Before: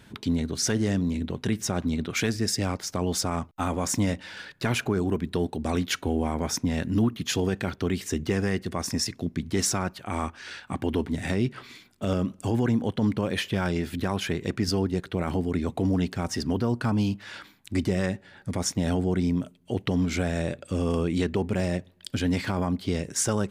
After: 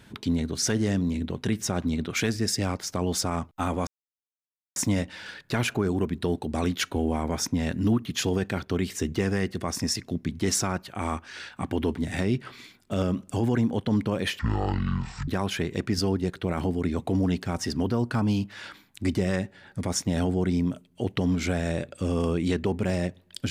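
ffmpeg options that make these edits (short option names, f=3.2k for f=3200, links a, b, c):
-filter_complex "[0:a]asplit=4[a][b][c][d];[a]atrim=end=3.87,asetpts=PTS-STARTPTS,afade=t=out:st=3.866:d=0.004:c=hsin,apad=pad_dur=0.89[e];[b]atrim=start=3.87:end=13.504,asetpts=PTS-STARTPTS,afade=t=in:d=0.004:c=hsin[f];[c]atrim=start=13.5:end=13.98,asetpts=PTS-STARTPTS,asetrate=23814,aresample=44100[g];[d]atrim=start=13.976[h];[e][f]concat=n=2:v=0:a=1[i];[i][g]acrossfade=d=0.004:c1=hsin:c2=hsin[j];[j][h]acrossfade=d=0.004:c1=hsin:c2=hsin"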